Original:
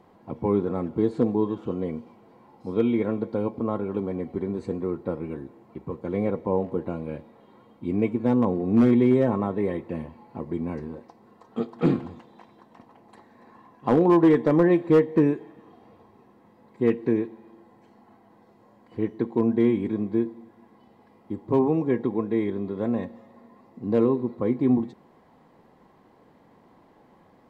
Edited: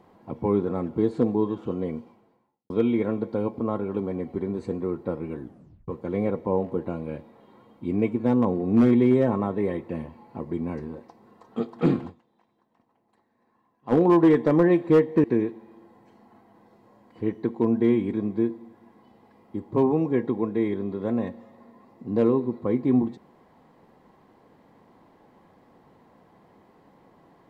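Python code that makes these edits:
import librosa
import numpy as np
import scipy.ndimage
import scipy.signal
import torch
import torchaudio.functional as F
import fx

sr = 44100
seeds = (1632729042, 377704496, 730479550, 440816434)

y = fx.edit(x, sr, fx.fade_out_span(start_s=1.98, length_s=0.72, curve='qua'),
    fx.tape_stop(start_s=5.41, length_s=0.47),
    fx.fade_down_up(start_s=12.09, length_s=1.84, db=-16.5, fade_s=0.24, curve='exp'),
    fx.cut(start_s=15.24, length_s=1.76), tone=tone)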